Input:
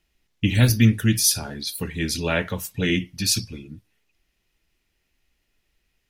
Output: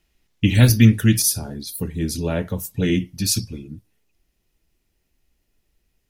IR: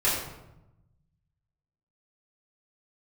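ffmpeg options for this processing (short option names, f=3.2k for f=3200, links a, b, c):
-af "asetnsamples=n=441:p=0,asendcmd='1.22 equalizer g -15;2.73 equalizer g -9',equalizer=f=2.3k:t=o:w=2.6:g=-2.5,volume=4dB"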